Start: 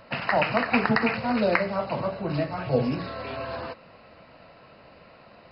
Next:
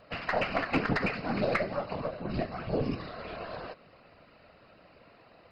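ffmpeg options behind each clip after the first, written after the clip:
ffmpeg -i in.wav -af "bandreject=frequency=910:width=7,afftfilt=real='hypot(re,im)*cos(2*PI*random(0))':imag='hypot(re,im)*sin(2*PI*random(1))':win_size=512:overlap=0.75,aeval=exprs='0.211*(cos(1*acos(clip(val(0)/0.211,-1,1)))-cos(1*PI/2))+0.00944*(cos(6*acos(clip(val(0)/0.211,-1,1)))-cos(6*PI/2))':channel_layout=same" out.wav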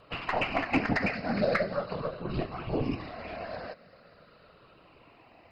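ffmpeg -i in.wav -af "afftfilt=real='re*pow(10,7/40*sin(2*PI*(0.65*log(max(b,1)*sr/1024/100)/log(2)-(-0.42)*(pts-256)/sr)))':imag='im*pow(10,7/40*sin(2*PI*(0.65*log(max(b,1)*sr/1024/100)/log(2)-(-0.42)*(pts-256)/sr)))':win_size=1024:overlap=0.75" out.wav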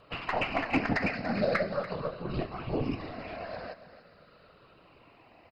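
ffmpeg -i in.wav -af "aecho=1:1:288:0.188,volume=-1dB" out.wav

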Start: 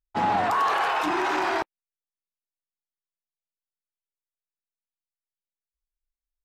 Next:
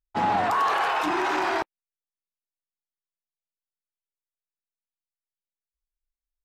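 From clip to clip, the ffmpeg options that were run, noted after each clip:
ffmpeg -i in.wav -af anull out.wav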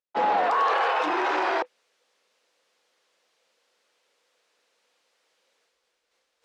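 ffmpeg -i in.wav -af "equalizer=frequency=500:width_type=o:width=0.32:gain=12,areverse,acompressor=mode=upward:threshold=-39dB:ratio=2.5,areverse,highpass=360,lowpass=4900" out.wav

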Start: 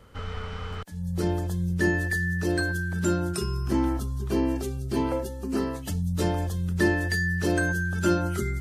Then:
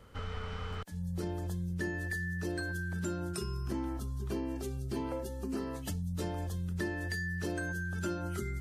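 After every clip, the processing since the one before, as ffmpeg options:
ffmpeg -i in.wav -af "acompressor=threshold=-30dB:ratio=4,volume=-3.5dB" out.wav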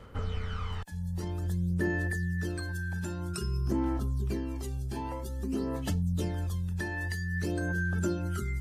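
ffmpeg -i in.wav -af "aphaser=in_gain=1:out_gain=1:delay=1.2:decay=0.55:speed=0.51:type=sinusoidal" out.wav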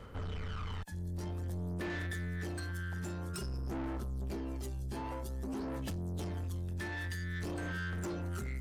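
ffmpeg -i in.wav -af "asoftclip=type=tanh:threshold=-35.5dB" out.wav

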